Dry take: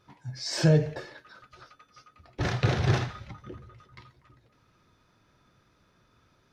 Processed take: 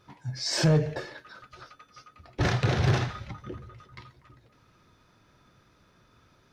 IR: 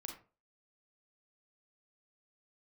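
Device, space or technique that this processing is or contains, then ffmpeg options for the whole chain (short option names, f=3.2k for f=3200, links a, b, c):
limiter into clipper: -af "alimiter=limit=-16dB:level=0:latency=1:release=220,asoftclip=type=hard:threshold=-19.5dB,volume=3.5dB"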